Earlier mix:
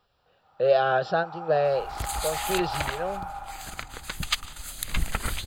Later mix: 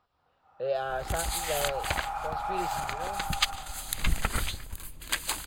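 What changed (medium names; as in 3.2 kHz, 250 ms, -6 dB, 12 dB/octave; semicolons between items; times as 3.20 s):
speech -9.5 dB; second sound: entry -0.90 s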